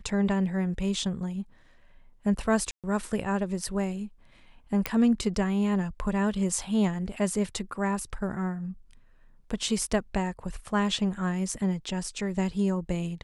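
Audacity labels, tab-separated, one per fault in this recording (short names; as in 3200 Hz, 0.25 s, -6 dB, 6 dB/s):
2.710000	2.840000	gap 0.127 s
4.860000	4.860000	pop -10 dBFS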